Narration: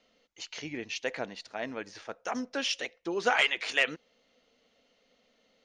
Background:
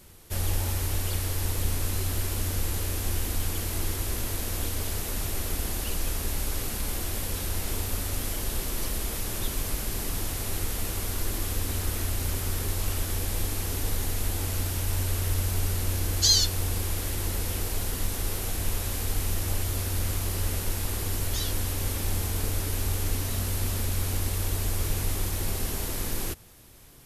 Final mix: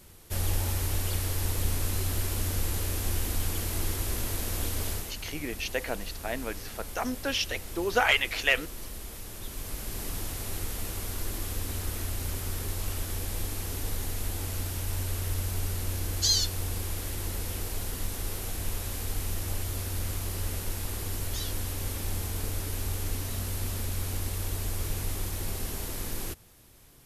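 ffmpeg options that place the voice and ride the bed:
ffmpeg -i stem1.wav -i stem2.wav -filter_complex "[0:a]adelay=4700,volume=2dB[link_01];[1:a]volume=5dB,afade=type=out:start_time=4.9:duration=0.24:silence=0.354813,afade=type=in:start_time=9.4:duration=0.66:silence=0.501187[link_02];[link_01][link_02]amix=inputs=2:normalize=0" out.wav

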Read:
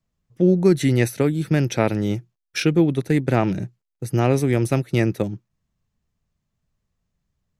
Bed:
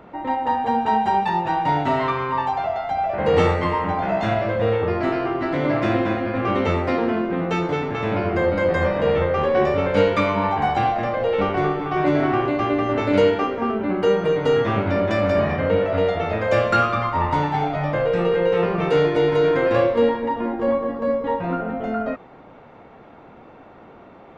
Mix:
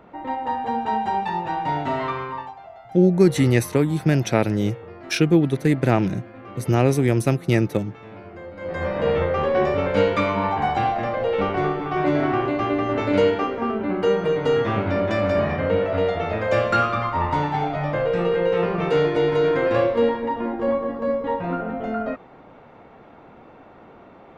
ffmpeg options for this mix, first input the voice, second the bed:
ffmpeg -i stem1.wav -i stem2.wav -filter_complex "[0:a]adelay=2550,volume=0.5dB[link_01];[1:a]volume=12.5dB,afade=type=out:start_time=2.18:duration=0.37:silence=0.199526,afade=type=in:start_time=8.56:duration=0.5:silence=0.149624[link_02];[link_01][link_02]amix=inputs=2:normalize=0" out.wav

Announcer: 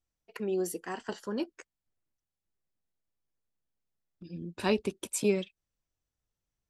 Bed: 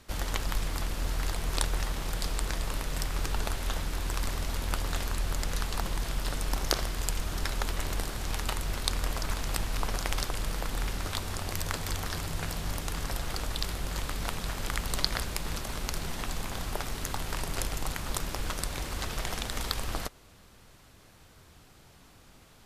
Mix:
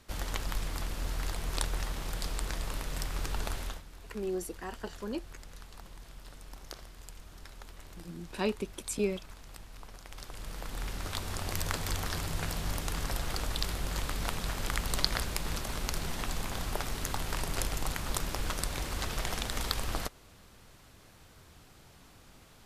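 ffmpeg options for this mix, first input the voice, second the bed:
ffmpeg -i stem1.wav -i stem2.wav -filter_complex "[0:a]adelay=3750,volume=-3.5dB[link_01];[1:a]volume=13.5dB,afade=type=out:start_time=3.6:duration=0.22:silence=0.199526,afade=type=in:start_time=10.09:duration=1.48:silence=0.141254[link_02];[link_01][link_02]amix=inputs=2:normalize=0" out.wav

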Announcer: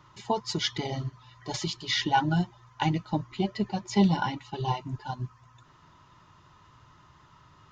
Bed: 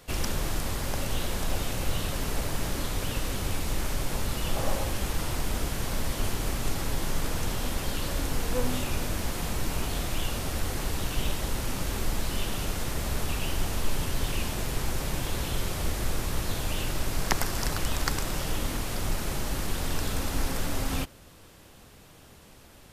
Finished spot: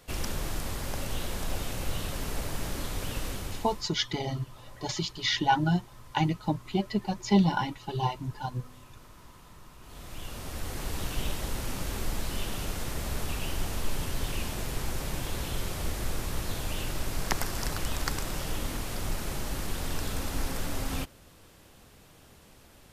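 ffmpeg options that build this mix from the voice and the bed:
ffmpeg -i stem1.wav -i stem2.wav -filter_complex "[0:a]adelay=3350,volume=0dB[link_01];[1:a]volume=16.5dB,afade=type=out:start_time=3.27:duration=0.61:silence=0.105925,afade=type=in:start_time=9.8:duration=1.21:silence=0.1[link_02];[link_01][link_02]amix=inputs=2:normalize=0" out.wav

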